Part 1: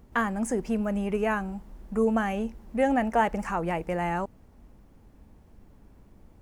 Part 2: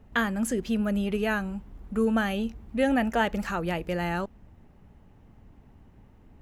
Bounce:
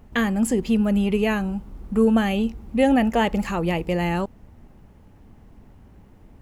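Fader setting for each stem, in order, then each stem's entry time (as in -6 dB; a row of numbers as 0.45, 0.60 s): +0.5, +3.0 dB; 0.00, 0.00 s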